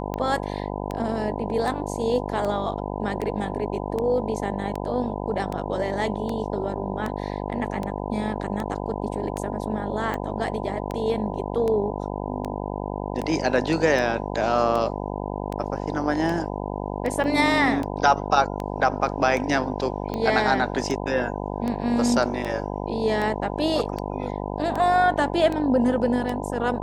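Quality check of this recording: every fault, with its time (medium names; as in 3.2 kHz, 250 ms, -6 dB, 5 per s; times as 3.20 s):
buzz 50 Hz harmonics 20 -30 dBFS
tick 78 rpm -16 dBFS
17.24 s: dropout 2.1 ms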